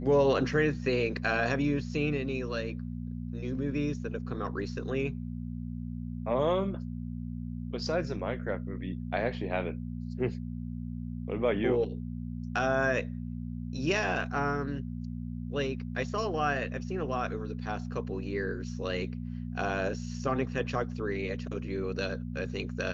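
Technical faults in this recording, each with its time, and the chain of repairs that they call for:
hum 60 Hz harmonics 4 -37 dBFS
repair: de-hum 60 Hz, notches 4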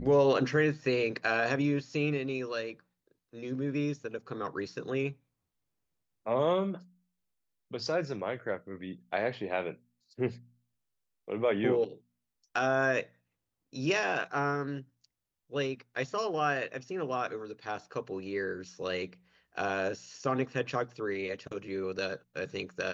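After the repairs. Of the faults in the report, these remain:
nothing left

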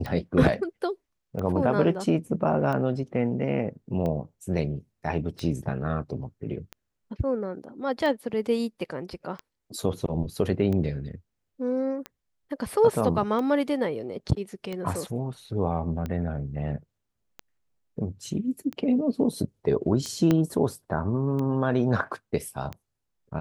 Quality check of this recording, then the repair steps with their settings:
tick 45 rpm -20 dBFS
20.31 s: pop -10 dBFS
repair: de-click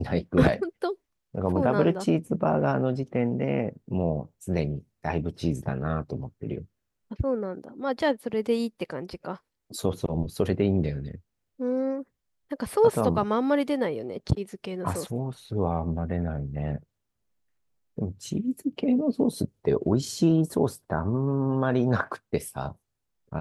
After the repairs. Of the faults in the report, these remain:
20.31 s: pop

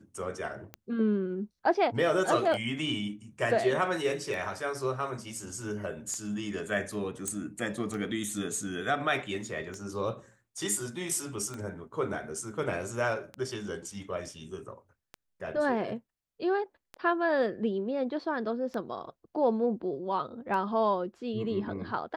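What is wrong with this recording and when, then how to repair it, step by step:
tick 33 1/3 rpm -24 dBFS
7.28 s: pop -18 dBFS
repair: de-click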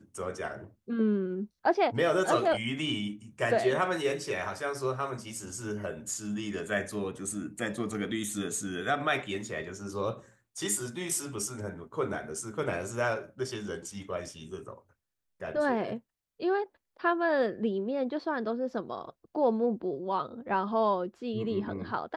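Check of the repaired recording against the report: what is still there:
nothing left

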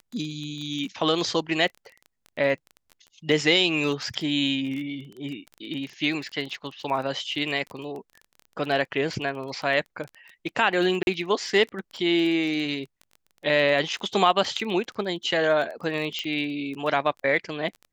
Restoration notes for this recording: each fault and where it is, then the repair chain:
crackle 20 per s -32 dBFS
11.03–11.07 s: dropout 41 ms
16.19 s: pop -16 dBFS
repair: de-click; interpolate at 11.03 s, 41 ms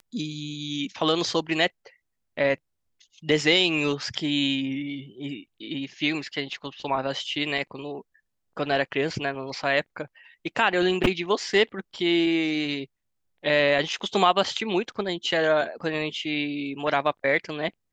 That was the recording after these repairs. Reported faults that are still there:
nothing left

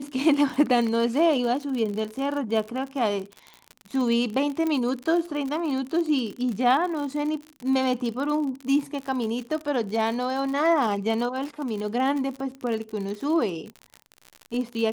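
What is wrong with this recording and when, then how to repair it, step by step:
crackle 60 per s -30 dBFS
4.67 s: pop -16 dBFS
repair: de-click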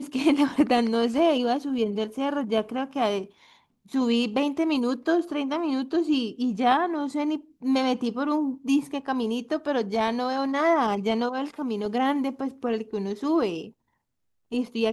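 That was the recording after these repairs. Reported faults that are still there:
nothing left

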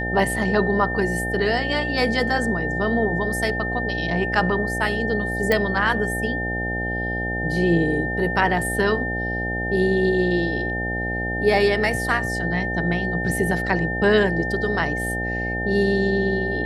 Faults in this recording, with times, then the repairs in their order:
buzz 60 Hz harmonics 14 -28 dBFS
whine 1.8 kHz -26 dBFS
5.52 s: pop -7 dBFS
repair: de-click; de-hum 60 Hz, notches 14; band-stop 1.8 kHz, Q 30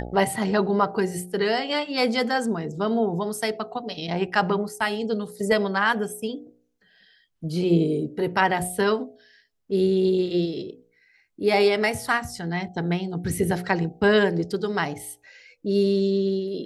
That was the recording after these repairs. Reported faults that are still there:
nothing left

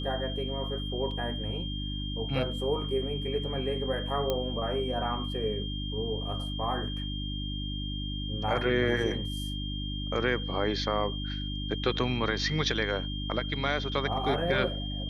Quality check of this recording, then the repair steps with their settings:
hum 50 Hz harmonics 6 -35 dBFS
whine 3.2 kHz -38 dBFS
1.11 s: dropout 2.5 ms
4.30 s: pop -15 dBFS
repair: de-click; band-stop 3.2 kHz, Q 30; de-hum 50 Hz, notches 6; interpolate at 1.11 s, 2.5 ms

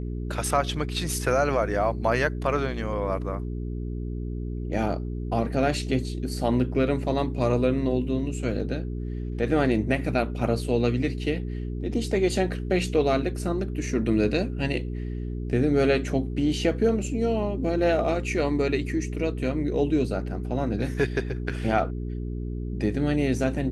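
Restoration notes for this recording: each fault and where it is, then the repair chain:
hum 60 Hz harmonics 7 -31 dBFS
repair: de-hum 60 Hz, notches 7

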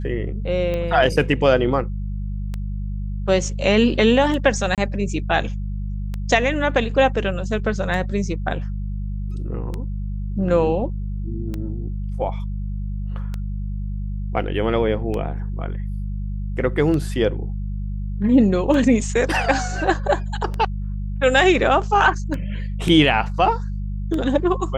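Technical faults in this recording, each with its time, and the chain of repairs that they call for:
hum 50 Hz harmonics 4 -26 dBFS
tick 33 1/3 rpm -15 dBFS
4.75–4.78 s: dropout 27 ms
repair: de-click; de-hum 50 Hz, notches 4; interpolate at 4.75 s, 27 ms

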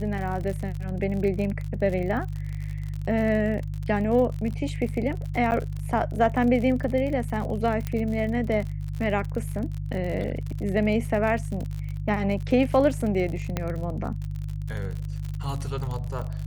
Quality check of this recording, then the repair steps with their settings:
crackle 55 per s -31 dBFS
hum 50 Hz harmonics 3 -31 dBFS
5.51–5.52 s: dropout 8.8 ms
7.87 s: pop -16 dBFS
13.57 s: pop -12 dBFS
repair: de-click; de-hum 50 Hz, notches 3; interpolate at 5.51 s, 8.8 ms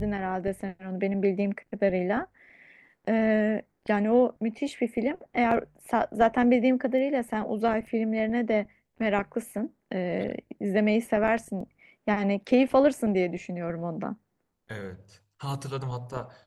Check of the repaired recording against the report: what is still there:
7.87 s: pop

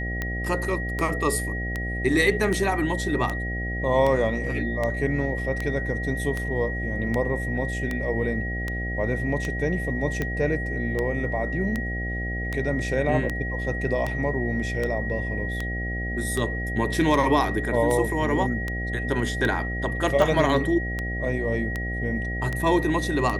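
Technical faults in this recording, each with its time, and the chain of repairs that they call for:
buzz 60 Hz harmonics 13 -30 dBFS
tick 78 rpm -14 dBFS
whine 1.9 kHz -31 dBFS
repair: de-click; band-stop 1.9 kHz, Q 30; de-hum 60 Hz, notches 13

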